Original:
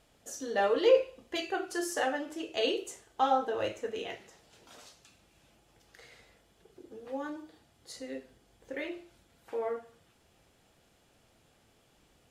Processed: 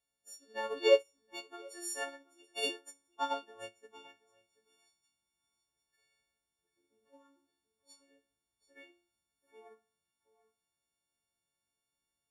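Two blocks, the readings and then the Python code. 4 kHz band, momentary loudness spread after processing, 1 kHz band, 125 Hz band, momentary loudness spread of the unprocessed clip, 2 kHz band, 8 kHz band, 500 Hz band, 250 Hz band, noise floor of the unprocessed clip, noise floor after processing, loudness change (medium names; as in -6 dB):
-3.0 dB, 22 LU, -9.5 dB, under -15 dB, 19 LU, -5.0 dB, -2.5 dB, -5.0 dB, -12.5 dB, -67 dBFS, under -85 dBFS, -2.0 dB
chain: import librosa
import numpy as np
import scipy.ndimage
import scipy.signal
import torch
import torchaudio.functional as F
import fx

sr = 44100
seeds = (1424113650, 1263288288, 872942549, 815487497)

y = fx.freq_snap(x, sr, grid_st=4)
y = y + 10.0 ** (-11.0 / 20.0) * np.pad(y, (int(735 * sr / 1000.0), 0))[:len(y)]
y = fx.upward_expand(y, sr, threshold_db=-37.0, expansion=2.5)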